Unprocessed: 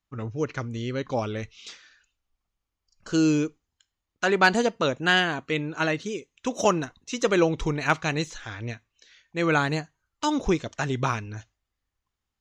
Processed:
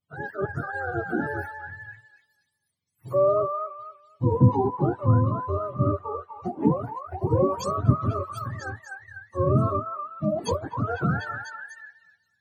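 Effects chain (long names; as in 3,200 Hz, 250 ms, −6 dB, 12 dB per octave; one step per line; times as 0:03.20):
frequency axis turned over on the octave scale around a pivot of 430 Hz
echo through a band-pass that steps 248 ms, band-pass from 1,200 Hz, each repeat 0.7 octaves, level −0.5 dB
level +1 dB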